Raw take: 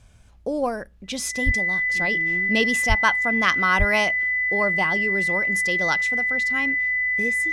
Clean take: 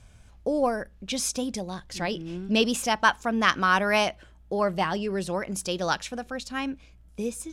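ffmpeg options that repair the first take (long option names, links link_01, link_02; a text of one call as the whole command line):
ffmpeg -i in.wav -filter_complex "[0:a]bandreject=frequency=2000:width=30,asplit=3[link_01][link_02][link_03];[link_01]afade=type=out:start_time=1.45:duration=0.02[link_04];[link_02]highpass=frequency=140:width=0.5412,highpass=frequency=140:width=1.3066,afade=type=in:start_time=1.45:duration=0.02,afade=type=out:start_time=1.57:duration=0.02[link_05];[link_03]afade=type=in:start_time=1.57:duration=0.02[link_06];[link_04][link_05][link_06]amix=inputs=3:normalize=0,asplit=3[link_07][link_08][link_09];[link_07]afade=type=out:start_time=2.88:duration=0.02[link_10];[link_08]highpass=frequency=140:width=0.5412,highpass=frequency=140:width=1.3066,afade=type=in:start_time=2.88:duration=0.02,afade=type=out:start_time=3:duration=0.02[link_11];[link_09]afade=type=in:start_time=3:duration=0.02[link_12];[link_10][link_11][link_12]amix=inputs=3:normalize=0,asplit=3[link_13][link_14][link_15];[link_13]afade=type=out:start_time=3.78:duration=0.02[link_16];[link_14]highpass=frequency=140:width=0.5412,highpass=frequency=140:width=1.3066,afade=type=in:start_time=3.78:duration=0.02,afade=type=out:start_time=3.9:duration=0.02[link_17];[link_15]afade=type=in:start_time=3.9:duration=0.02[link_18];[link_16][link_17][link_18]amix=inputs=3:normalize=0" out.wav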